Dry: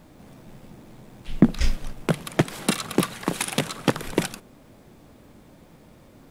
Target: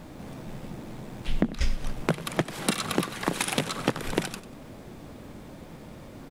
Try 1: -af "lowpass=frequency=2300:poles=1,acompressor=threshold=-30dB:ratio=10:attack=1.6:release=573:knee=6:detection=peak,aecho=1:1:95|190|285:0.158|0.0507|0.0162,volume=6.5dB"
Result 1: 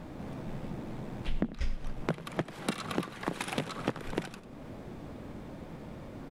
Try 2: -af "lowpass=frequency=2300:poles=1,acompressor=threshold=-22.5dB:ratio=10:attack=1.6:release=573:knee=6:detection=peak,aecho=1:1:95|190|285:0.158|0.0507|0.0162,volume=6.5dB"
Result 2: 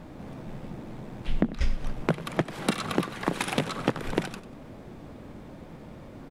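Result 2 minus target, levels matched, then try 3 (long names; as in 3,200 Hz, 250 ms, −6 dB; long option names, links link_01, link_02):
8,000 Hz band −6.5 dB
-af "lowpass=frequency=8800:poles=1,acompressor=threshold=-22.5dB:ratio=10:attack=1.6:release=573:knee=6:detection=peak,aecho=1:1:95|190|285:0.158|0.0507|0.0162,volume=6.5dB"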